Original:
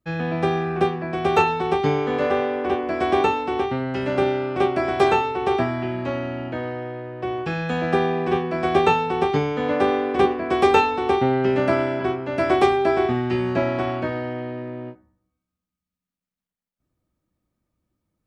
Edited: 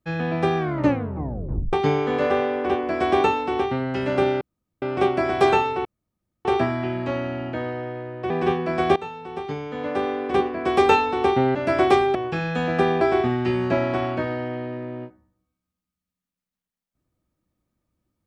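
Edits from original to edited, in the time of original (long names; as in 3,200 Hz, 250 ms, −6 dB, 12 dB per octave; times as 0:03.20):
0:00.58: tape stop 1.15 s
0:04.41: splice in room tone 0.41 s
0:05.44: splice in room tone 0.60 s
0:07.29–0:08.15: move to 0:12.86
0:08.81–0:10.88: fade in, from −19 dB
0:11.40–0:12.26: remove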